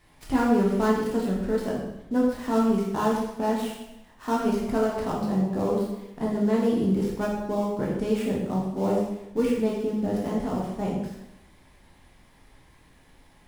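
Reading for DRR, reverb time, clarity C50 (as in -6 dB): -4.0 dB, 0.90 s, 2.0 dB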